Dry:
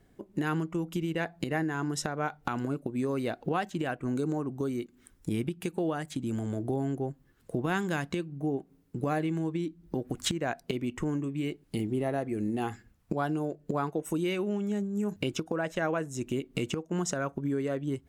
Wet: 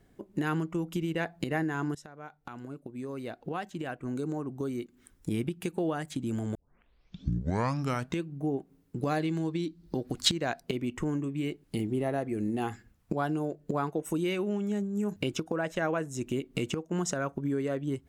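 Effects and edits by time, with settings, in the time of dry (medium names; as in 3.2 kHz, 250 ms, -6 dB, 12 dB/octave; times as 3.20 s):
1.95–5.43 s: fade in, from -17.5 dB
6.55 s: tape start 1.68 s
9.02–10.59 s: peaking EQ 4.4 kHz +11 dB 0.7 oct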